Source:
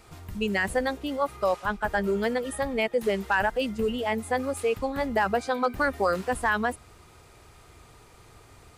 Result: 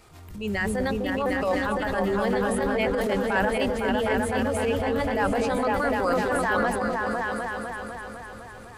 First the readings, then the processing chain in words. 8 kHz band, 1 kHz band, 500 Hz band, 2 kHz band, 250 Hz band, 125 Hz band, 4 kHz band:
+2.0 dB, +2.0 dB, +2.5 dB, +1.5 dB, +4.5 dB, +5.5 dB, +1.0 dB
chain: repeats that get brighter 0.252 s, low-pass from 400 Hz, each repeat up 2 oct, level 0 dB; transient shaper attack -10 dB, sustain +5 dB

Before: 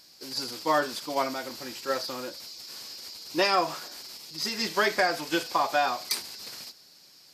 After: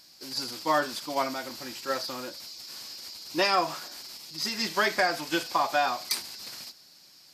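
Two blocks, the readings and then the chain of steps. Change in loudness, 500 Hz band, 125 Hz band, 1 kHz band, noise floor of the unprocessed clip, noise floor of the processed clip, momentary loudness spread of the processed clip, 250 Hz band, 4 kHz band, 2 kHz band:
-0.5 dB, -1.5 dB, 0.0 dB, 0.0 dB, -55 dBFS, -55 dBFS, 15 LU, -0.5 dB, 0.0 dB, 0.0 dB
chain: bell 450 Hz -5.5 dB 0.39 oct

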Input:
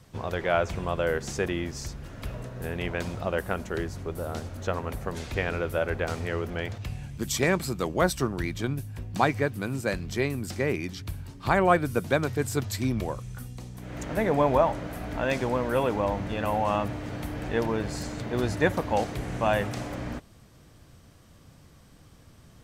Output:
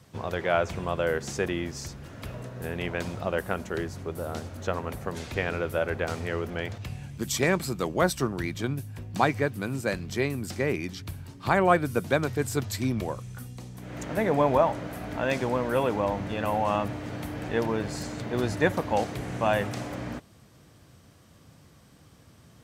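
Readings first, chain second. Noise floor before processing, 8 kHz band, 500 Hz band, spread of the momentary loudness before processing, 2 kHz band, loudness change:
-54 dBFS, 0.0 dB, 0.0 dB, 11 LU, 0.0 dB, 0.0 dB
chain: HPF 78 Hz

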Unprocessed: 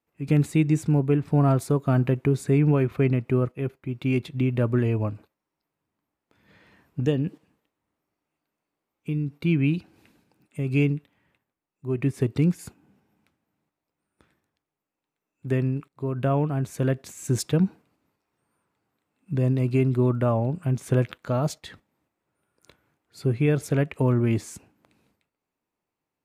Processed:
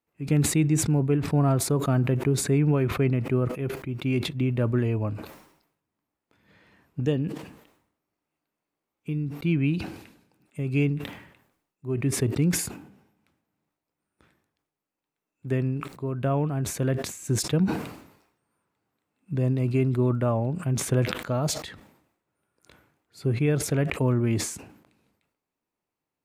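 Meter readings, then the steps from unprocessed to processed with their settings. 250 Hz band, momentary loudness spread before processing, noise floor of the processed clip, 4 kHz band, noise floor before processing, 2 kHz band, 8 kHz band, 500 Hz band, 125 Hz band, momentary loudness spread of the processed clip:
-1.5 dB, 10 LU, under -85 dBFS, +6.0 dB, under -85 dBFS, +0.5 dB, +9.5 dB, -1.5 dB, -1.5 dB, 11 LU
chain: sustainer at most 77 dB/s; gain -2 dB

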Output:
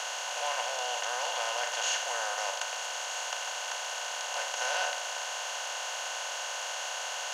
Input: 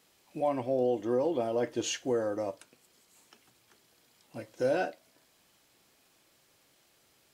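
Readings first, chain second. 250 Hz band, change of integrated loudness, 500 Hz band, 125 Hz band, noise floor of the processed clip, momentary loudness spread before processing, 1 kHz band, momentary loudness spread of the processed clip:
under -35 dB, -1.0 dB, -8.0 dB, under -40 dB, -37 dBFS, 18 LU, +6.5 dB, 4 LU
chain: per-bin compression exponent 0.2; inverse Chebyshev high-pass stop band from 320 Hz, stop band 50 dB

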